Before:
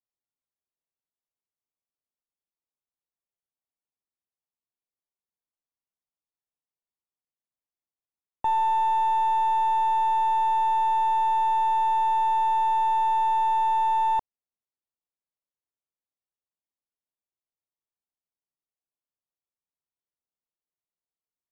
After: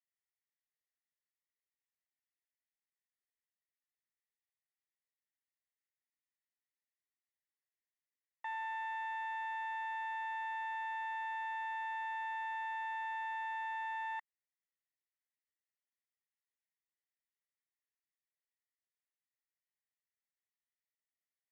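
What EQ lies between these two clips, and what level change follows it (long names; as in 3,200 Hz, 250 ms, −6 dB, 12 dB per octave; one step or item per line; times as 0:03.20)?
resonant band-pass 1,900 Hz, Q 8.9
spectral tilt +3 dB per octave
+5.5 dB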